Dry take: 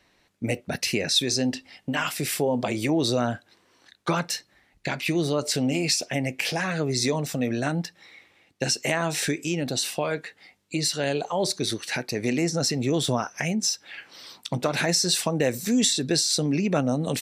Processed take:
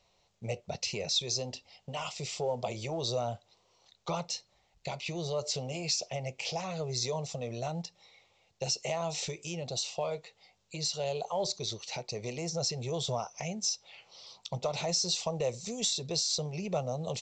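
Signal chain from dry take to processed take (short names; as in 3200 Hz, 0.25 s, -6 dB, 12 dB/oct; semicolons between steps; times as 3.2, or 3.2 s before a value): added harmonics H 5 -28 dB, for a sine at -9.5 dBFS; fixed phaser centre 680 Hz, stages 4; gain -6 dB; µ-law 128 kbps 16000 Hz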